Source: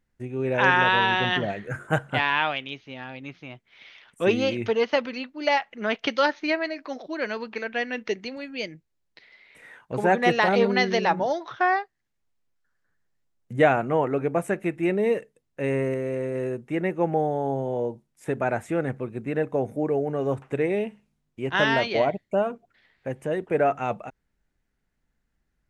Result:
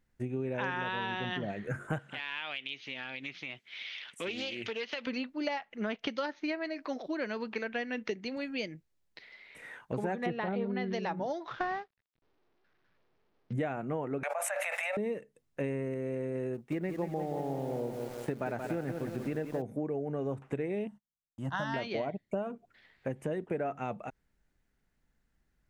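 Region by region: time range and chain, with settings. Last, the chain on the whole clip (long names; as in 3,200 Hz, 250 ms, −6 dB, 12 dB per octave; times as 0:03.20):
0:01.99–0:05.07: meter weighting curve D + downward compressor 2.5 to 1, threshold −39 dBFS + highs frequency-modulated by the lows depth 0.18 ms
0:10.26–0:10.93: low-pass filter 3,900 Hz 24 dB per octave + spectral tilt −1.5 dB per octave
0:11.47–0:13.53: variable-slope delta modulation 32 kbit/s + low-pass filter 3,600 Hz
0:14.23–0:14.97: Butterworth high-pass 560 Hz 96 dB per octave + envelope flattener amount 100%
0:16.54–0:19.62: mu-law and A-law mismatch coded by A + feedback echo at a low word length 178 ms, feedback 55%, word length 7 bits, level −6.5 dB
0:20.87–0:21.74: noise gate −54 dBFS, range −32 dB + phaser with its sweep stopped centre 990 Hz, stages 4
whole clip: dynamic equaliser 200 Hz, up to +6 dB, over −38 dBFS, Q 0.73; downward compressor 6 to 1, threshold −32 dBFS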